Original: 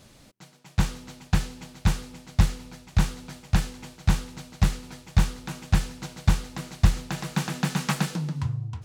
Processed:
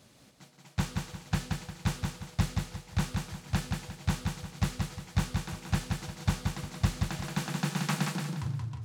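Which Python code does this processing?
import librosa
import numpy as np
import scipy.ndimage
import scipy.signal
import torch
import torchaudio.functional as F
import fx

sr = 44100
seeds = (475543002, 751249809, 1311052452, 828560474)

y = scipy.signal.sosfilt(scipy.signal.butter(2, 80.0, 'highpass', fs=sr, output='sos'), x)
y = fx.echo_feedback(y, sr, ms=177, feedback_pct=33, wet_db=-4)
y = y * librosa.db_to_amplitude(-5.5)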